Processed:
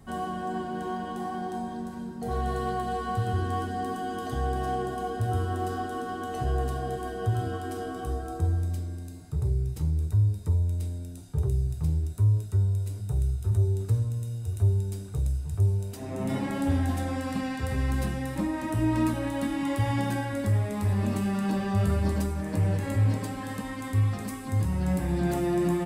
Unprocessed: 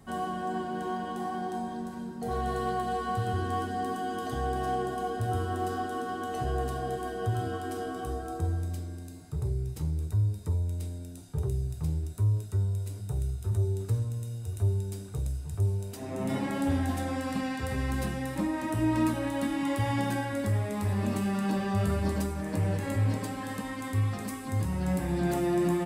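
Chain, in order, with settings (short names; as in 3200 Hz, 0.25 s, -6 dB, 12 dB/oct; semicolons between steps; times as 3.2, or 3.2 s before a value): low shelf 110 Hz +7 dB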